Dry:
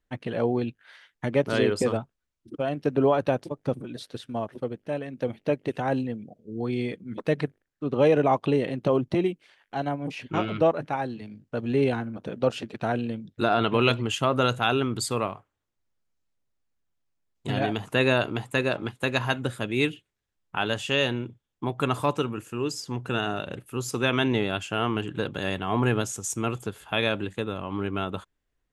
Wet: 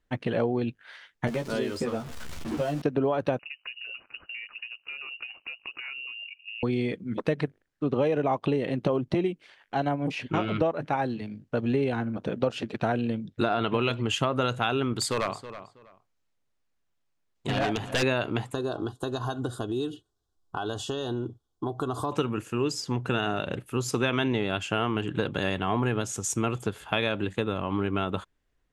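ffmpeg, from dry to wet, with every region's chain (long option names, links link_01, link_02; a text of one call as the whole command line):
ffmpeg -i in.wav -filter_complex "[0:a]asettb=1/sr,asplit=3[link_01][link_02][link_03];[link_01]atrim=end=1.274[link_04];[link_02]atrim=start=1.27:end=2.82,asetpts=PTS-STARTPTS,afade=type=in:duration=0.004:curve=qsin,afade=type=out:start_time=1.546:duration=0.004:curve=qsin,aeval=exprs='val(0)+0.5*0.0188*sgn(val(0))':channel_layout=same,acrossover=split=940|4400[link_05][link_06][link_07];[link_05]acompressor=threshold=-33dB:ratio=4[link_08];[link_06]acompressor=threshold=-47dB:ratio=4[link_09];[link_07]acompressor=threshold=-48dB:ratio=4[link_10];[link_08][link_09][link_10]amix=inputs=3:normalize=0,asplit=2[link_11][link_12];[link_12]adelay=13,volume=-4dB[link_13];[link_11][link_13]amix=inputs=2:normalize=0,atrim=end_sample=68355[link_14];[link_03]atrim=start=2.816[link_15];[link_04][link_14]acrossfade=duration=0.004:curve1=hsin:curve2=qsin[link_16];[link_16][link_15]acrossfade=duration=0.004:curve1=qsin:curve2=hsin,asettb=1/sr,asplit=3[link_17][link_18][link_19];[link_17]atrim=end=3.394[link_20];[link_18]atrim=start=3.39:end=6.63,asetpts=PTS-STARTPTS,afade=type=in:duration=0.004:curve=qsin,afade=type=out:start_time=3.236:duration=0.004:curve=qsin,acompressor=threshold=-38dB:ratio=12:attack=3.2:release=140:knee=1:detection=peak,lowpass=frequency=2600:width_type=q:width=0.5098,lowpass=frequency=2600:width_type=q:width=0.6013,lowpass=frequency=2600:width_type=q:width=0.9,lowpass=frequency=2600:width_type=q:width=2.563,afreqshift=-3000[link_21];[link_19]atrim=start=6.626[link_22];[link_20][link_21]acrossfade=duration=0.004:curve1=hsin:curve2=qsin[link_23];[link_23][link_22]acrossfade=duration=0.004:curve1=qsin:curve2=hsin,asettb=1/sr,asplit=3[link_24][link_25][link_26];[link_24]atrim=end=14.934[link_27];[link_25]atrim=start=14.93:end=18.03,asetpts=PTS-STARTPTS,afade=type=in:duration=0.004:curve=qsin,afade=type=out:start_time=3.096:duration=0.004:curve=qsin,lowshelf=frequency=280:gain=-5,aeval=exprs='0.0841*(abs(mod(val(0)/0.0841+3,4)-2)-1)':channel_layout=same,asplit=2[link_28][link_29];[link_29]adelay=323,lowpass=frequency=3800:poles=1,volume=-14dB,asplit=2[link_30][link_31];[link_31]adelay=323,lowpass=frequency=3800:poles=1,volume=0.22[link_32];[link_28][link_30][link_32]amix=inputs=3:normalize=0,atrim=end_sample=136710[link_33];[link_26]atrim=start=18.026[link_34];[link_27][link_33]acrossfade=duration=0.004:curve1=hsin:curve2=qsin[link_35];[link_35][link_34]acrossfade=duration=0.004:curve1=qsin:curve2=hsin,asettb=1/sr,asplit=3[link_36][link_37][link_38];[link_36]atrim=end=18.544[link_39];[link_37]atrim=start=18.54:end=22.12,asetpts=PTS-STARTPTS,afade=type=in:duration=0.004:curve=qsin,afade=type=out:start_time=3.576:duration=0.004:curve=qsin,aecho=1:1:2.7:0.5,atrim=end_sample=157878,acompressor=threshold=-30dB:ratio=4:attack=3.2:release=140:knee=1:detection=peak,asuperstop=centerf=2200:order=4:qfactor=1[link_40];[link_38]atrim=start=22.116[link_41];[link_39][link_40]acrossfade=duration=0.004:curve1=hsin:curve2=qsin[link_42];[link_42][link_41]acrossfade=duration=0.004:curve1=qsin:curve2=hsin,highshelf=frequency=11000:gain=-12,acompressor=threshold=-26dB:ratio=6,volume=4dB" out.wav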